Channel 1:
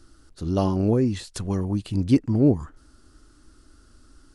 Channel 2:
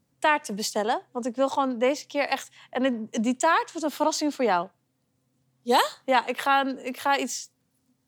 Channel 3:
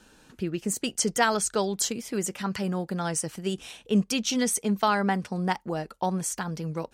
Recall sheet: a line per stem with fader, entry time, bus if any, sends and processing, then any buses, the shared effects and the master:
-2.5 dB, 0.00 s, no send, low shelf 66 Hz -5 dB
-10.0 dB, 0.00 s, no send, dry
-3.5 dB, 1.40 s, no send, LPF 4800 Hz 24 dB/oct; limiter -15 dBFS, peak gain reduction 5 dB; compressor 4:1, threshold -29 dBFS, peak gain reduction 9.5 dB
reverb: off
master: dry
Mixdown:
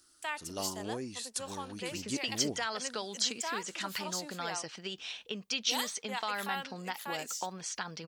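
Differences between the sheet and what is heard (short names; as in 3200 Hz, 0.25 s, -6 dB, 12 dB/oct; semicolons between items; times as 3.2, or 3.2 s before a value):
stem 1 -2.5 dB -> -11.0 dB; stem 2 -10.0 dB -> -17.0 dB; master: extra tilt +4 dB/oct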